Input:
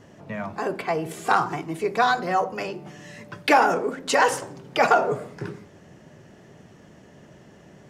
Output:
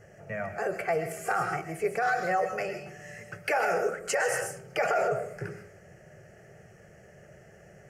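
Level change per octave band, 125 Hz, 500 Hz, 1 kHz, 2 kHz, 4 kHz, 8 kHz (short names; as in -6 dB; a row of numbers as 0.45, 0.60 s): -4.5, -4.0, -8.5, -5.0, -11.5, -2.5 dB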